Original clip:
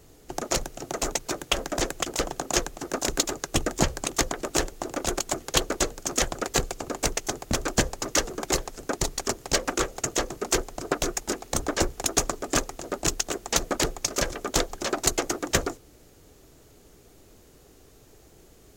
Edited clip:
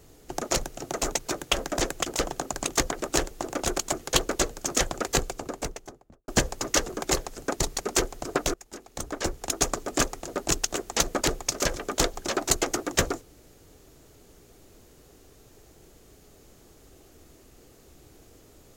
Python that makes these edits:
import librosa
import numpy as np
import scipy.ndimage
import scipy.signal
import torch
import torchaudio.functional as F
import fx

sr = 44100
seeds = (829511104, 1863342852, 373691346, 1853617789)

y = fx.studio_fade_out(x, sr, start_s=6.54, length_s=1.15)
y = fx.edit(y, sr, fx.cut(start_s=2.53, length_s=1.41),
    fx.cut(start_s=9.22, length_s=1.15),
    fx.fade_in_from(start_s=11.1, length_s=1.29, floor_db=-22.5), tone=tone)